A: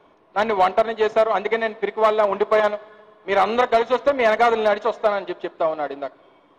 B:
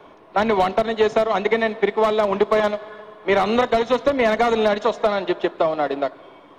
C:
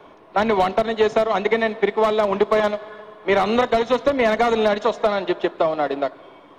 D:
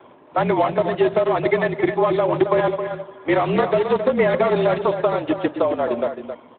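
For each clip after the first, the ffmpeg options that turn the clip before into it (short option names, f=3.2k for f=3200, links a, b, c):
-filter_complex "[0:a]acrossover=split=290|3200[a][b][c];[b]acompressor=threshold=-26dB:ratio=6[d];[c]alimiter=level_in=13dB:limit=-24dB:level=0:latency=1,volume=-13dB[e];[a][d][e]amix=inputs=3:normalize=0,volume=8.5dB"
-af anull
-filter_complex "[0:a]afreqshift=-45,asplit=2[a][b];[b]adelay=268.2,volume=-8dB,highshelf=f=4k:g=-6.04[c];[a][c]amix=inputs=2:normalize=0" -ar 8000 -c:a libopencore_amrnb -b:a 12200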